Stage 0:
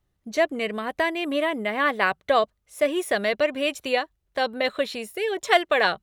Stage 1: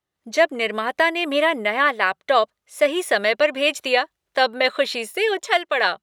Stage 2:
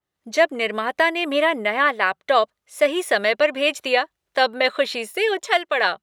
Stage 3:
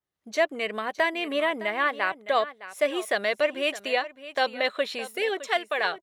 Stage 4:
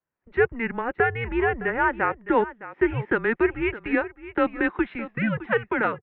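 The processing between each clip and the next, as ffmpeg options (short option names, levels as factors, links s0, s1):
-af "highpass=f=550:p=1,highshelf=f=11000:g=-7.5,dynaudnorm=f=130:g=3:m=3.98,volume=0.75"
-af "adynamicequalizer=threshold=0.0316:dfrequency=3100:dqfactor=0.7:tfrequency=3100:tqfactor=0.7:attack=5:release=100:ratio=0.375:range=1.5:mode=cutabove:tftype=highshelf"
-af "aecho=1:1:612:0.178,volume=0.473"
-af "highpass=f=280:t=q:w=0.5412,highpass=f=280:t=q:w=1.307,lowpass=f=2500:t=q:w=0.5176,lowpass=f=2500:t=q:w=0.7071,lowpass=f=2500:t=q:w=1.932,afreqshift=-230,volume=1.41"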